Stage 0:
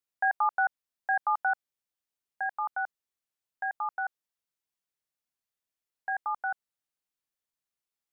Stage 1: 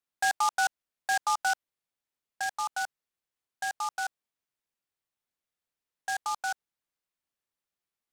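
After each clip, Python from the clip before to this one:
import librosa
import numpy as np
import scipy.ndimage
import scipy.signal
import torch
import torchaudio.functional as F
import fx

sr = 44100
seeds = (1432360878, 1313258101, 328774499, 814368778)

y = fx.noise_mod_delay(x, sr, seeds[0], noise_hz=5400.0, depth_ms=0.043)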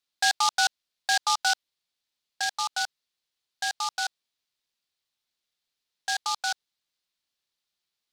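y = fx.peak_eq(x, sr, hz=4100.0, db=13.5, octaves=1.3)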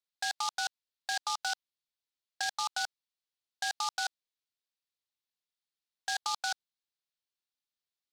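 y = fx.level_steps(x, sr, step_db=16)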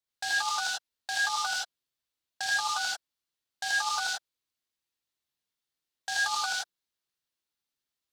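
y = fx.peak_eq(x, sr, hz=95.0, db=5.0, octaves=2.5)
y = fx.rev_gated(y, sr, seeds[1], gate_ms=120, shape='rising', drr_db=-4.0)
y = y * librosa.db_to_amplitude(-1.0)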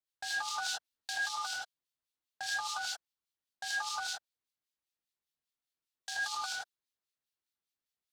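y = fx.rider(x, sr, range_db=10, speed_s=0.5)
y = fx.harmonic_tremolo(y, sr, hz=5.0, depth_pct=70, crossover_hz=2000.0)
y = y * librosa.db_to_amplitude(-2.5)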